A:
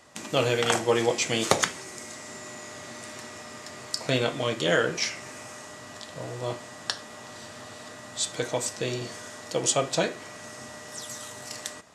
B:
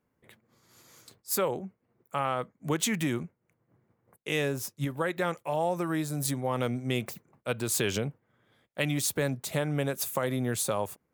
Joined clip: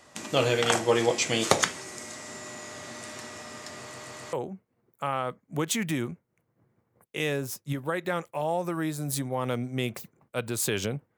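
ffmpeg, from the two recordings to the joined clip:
-filter_complex "[0:a]apad=whole_dur=11.17,atrim=end=11.17,asplit=4[a][b][c][d];[a]atrim=end=3.942[e];[b]atrim=start=3.808:end=3.942[f];[c]atrim=start=3.808:end=3.942[g];[d]atrim=start=3.808:end=3.942[h];[1:a]atrim=start=1.448:end=8.29[i];[e][f]acrossfade=d=0.004:c1=hsin:c2=hsin[j];[j][g]acrossfade=d=0.004:c1=hsin:c2=hsin[k];[k][h]acrossfade=d=0.004:c1=hsin:c2=hsin[l];[l][i]acrossfade=d=0.004:c1=hsin:c2=hsin"

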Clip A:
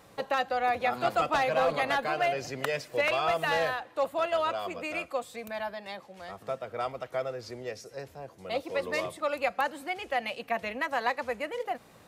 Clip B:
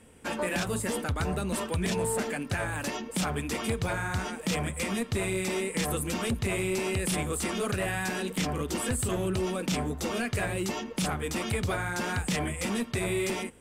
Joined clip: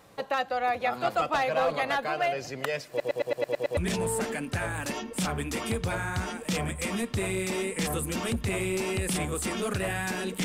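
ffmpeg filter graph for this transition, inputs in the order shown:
-filter_complex "[0:a]apad=whole_dur=10.44,atrim=end=10.44,asplit=8[a][b][c][d][e][f][g][h];[a]atrim=end=3.002[i];[b]atrim=start=2.888:end=3.002[j];[c]atrim=start=2.888:end=3.002[k];[d]atrim=start=2.888:end=3.002[l];[e]atrim=start=2.888:end=3.002[m];[f]atrim=start=2.888:end=3.002[n];[g]atrim=start=2.888:end=3.002[o];[h]atrim=start=2.888:end=3.002[p];[1:a]atrim=start=1.748:end=8.42[q];[i][j]acrossfade=d=0.004:c1=hsin:c2=hsin[r];[r][k]acrossfade=d=0.004:c1=hsin:c2=hsin[s];[s][l]acrossfade=d=0.004:c1=hsin:c2=hsin[t];[t][m]acrossfade=d=0.004:c1=hsin:c2=hsin[u];[u][n]acrossfade=d=0.004:c1=hsin:c2=hsin[v];[v][o]acrossfade=d=0.004:c1=hsin:c2=hsin[w];[w][p]acrossfade=d=0.004:c1=hsin:c2=hsin[x];[x][q]acrossfade=d=0.004:c1=hsin:c2=hsin"

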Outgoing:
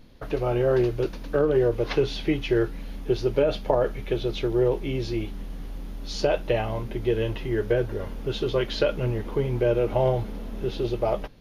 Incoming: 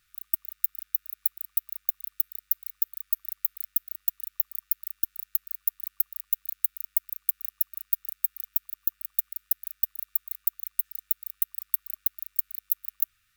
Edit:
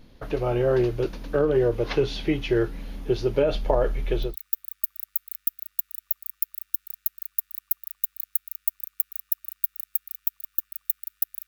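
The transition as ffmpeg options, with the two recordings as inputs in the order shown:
-filter_complex "[0:a]asplit=3[a][b][c];[a]afade=t=out:st=3.52:d=0.02[d];[b]asubboost=boost=4:cutoff=60,afade=t=in:st=3.52:d=0.02,afade=t=out:st=4.36:d=0.02[e];[c]afade=t=in:st=4.36:d=0.02[f];[d][e][f]amix=inputs=3:normalize=0,apad=whole_dur=11.47,atrim=end=11.47,atrim=end=4.36,asetpts=PTS-STARTPTS[g];[1:a]atrim=start=2.51:end=9.76,asetpts=PTS-STARTPTS[h];[g][h]acrossfade=d=0.14:c1=tri:c2=tri"

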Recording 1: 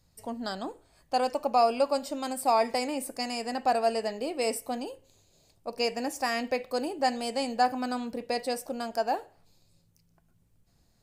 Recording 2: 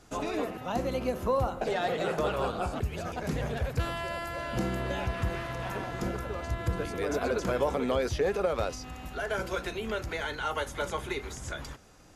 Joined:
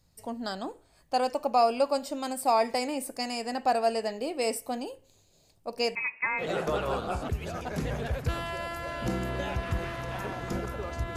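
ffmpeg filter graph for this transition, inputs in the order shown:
-filter_complex "[0:a]asettb=1/sr,asplit=3[a][b][c];[a]atrim=end=5.954[d];[b]atrim=start=5.95:end=6.45,asetpts=PTS-STARTPTS,afade=t=in:d=0.004:c=qsin,afade=t=out:st=0.496:d=0.004:c=qsin,lowpass=f=2.4k:t=q:w=0.5098,lowpass=f=2.4k:t=q:w=0.6013,lowpass=f=2.4k:t=q:w=0.9,lowpass=f=2.4k:t=q:w=2.563,afreqshift=-2800[e];[c]atrim=start=6.446[f];[d][e]acrossfade=d=0.004:c1=hsin:c2=qsin[g];[g][f]acrossfade=d=0.004:c1=qsin:c2=hsin,apad=whole_dur=11.16,atrim=end=11.16,atrim=end=6.45,asetpts=PTS-STARTPTS[h];[1:a]atrim=start=1.88:end=6.67,asetpts=PTS-STARTPTS[i];[h][i]acrossfade=d=0.08:c1=tri:c2=tri"

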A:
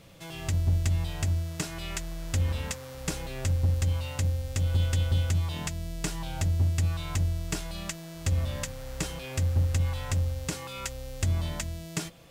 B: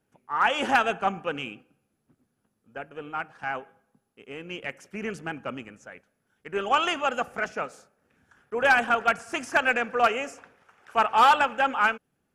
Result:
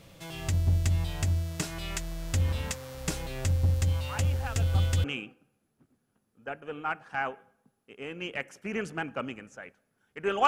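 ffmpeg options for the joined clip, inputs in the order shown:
-filter_complex "[1:a]asplit=2[a][b];[0:a]apad=whole_dur=10.47,atrim=end=10.47,atrim=end=5.042[c];[b]atrim=start=1.328:end=6.76[d];[a]atrim=start=0.38:end=1.33,asetpts=PTS-STARTPTS,volume=-17.5dB,afade=t=in:d=0.004:c=hsin,afade=t=out:st=0.946:d=0.004:c=hsin,adelay=180369S[e];[c][d]acrossfade=d=0.004:c1=hsin:c2=hsin[f];[f][e]amix=inputs=2:normalize=0"

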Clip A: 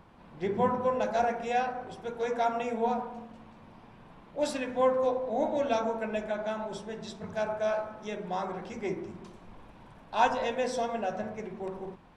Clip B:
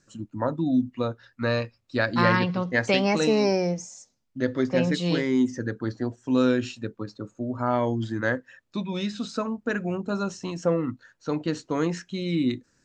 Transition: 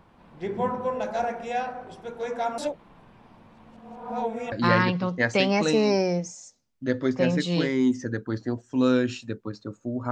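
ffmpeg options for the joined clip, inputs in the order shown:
-filter_complex "[0:a]apad=whole_dur=10.11,atrim=end=10.11,asplit=2[a][b];[a]atrim=end=2.582[c];[b]atrim=start=2.578:end=4.522,asetpts=PTS-STARTPTS,areverse[d];[1:a]atrim=start=2.058:end=7.65[e];[c][d]acrossfade=d=0.004:c1=hsin:c2=hsin[f];[f][e]acrossfade=d=0.004:c1=hsin:c2=hsin"

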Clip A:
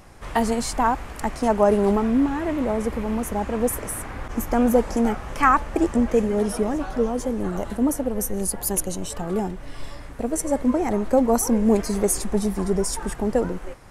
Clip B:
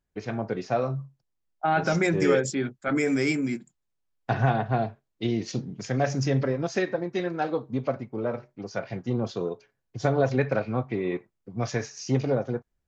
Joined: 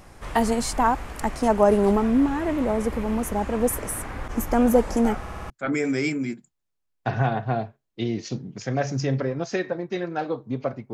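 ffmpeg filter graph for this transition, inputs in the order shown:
-filter_complex "[0:a]apad=whole_dur=10.93,atrim=end=10.93,asplit=5[a][b][c][d][e];[a]atrim=end=5.262[f];[b]atrim=start=5.198:end=5.262[g];[c]atrim=start=5.198:end=5.262[h];[d]atrim=start=5.198:end=5.262[i];[e]atrim=start=5.198:end=5.262[j];[1:a]atrim=start=2.728:end=8.16[k];[f][g]acrossfade=d=0.004:c1=hsin:c2=hsin[l];[l][h]acrossfade=d=0.004:c1=hsin:c2=hsin[m];[m][i]acrossfade=d=0.004:c1=hsin:c2=hsin[n];[n][j]acrossfade=d=0.004:c1=hsin:c2=hsin[o];[o][k]acrossfade=d=0.004:c1=hsin:c2=hsin"

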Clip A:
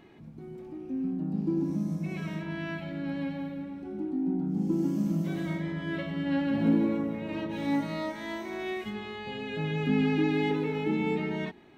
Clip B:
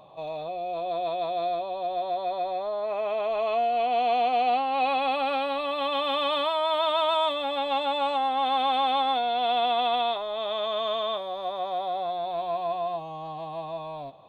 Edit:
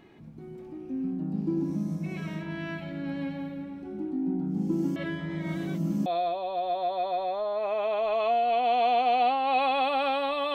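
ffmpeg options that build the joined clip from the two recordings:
-filter_complex "[0:a]apad=whole_dur=10.54,atrim=end=10.54,asplit=2[a][b];[a]atrim=end=4.962[c];[b]atrim=start=4.958:end=6.062,asetpts=PTS-STARTPTS,areverse[d];[1:a]atrim=start=1.328:end=5.81[e];[c][d]acrossfade=d=0.004:c1=hsin:c2=hsin[f];[f][e]acrossfade=d=0.004:c1=hsin:c2=hsin"

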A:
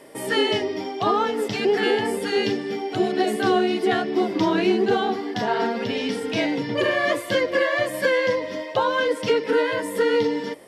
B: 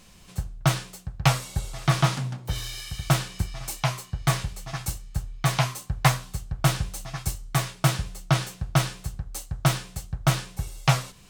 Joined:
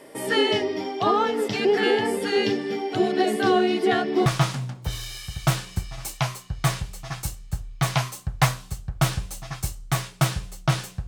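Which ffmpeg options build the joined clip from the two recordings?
-filter_complex "[0:a]apad=whole_dur=11.07,atrim=end=11.07,atrim=end=4.262[a];[1:a]atrim=start=1.888:end=8.7[b];[a][b]acrossfade=d=0.004:c1=hsin:c2=hsin"

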